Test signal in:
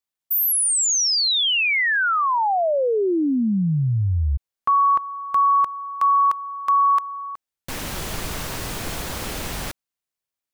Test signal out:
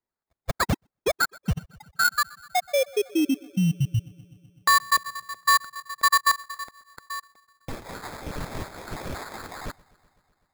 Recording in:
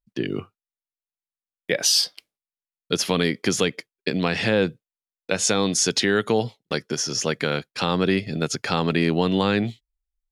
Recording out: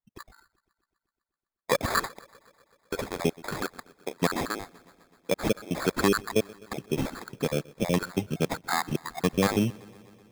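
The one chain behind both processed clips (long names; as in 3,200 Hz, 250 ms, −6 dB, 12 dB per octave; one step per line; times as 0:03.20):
time-frequency cells dropped at random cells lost 73%
bucket-brigade delay 126 ms, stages 4,096, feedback 73%, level −24 dB
sample-rate reduction 2,900 Hz, jitter 0%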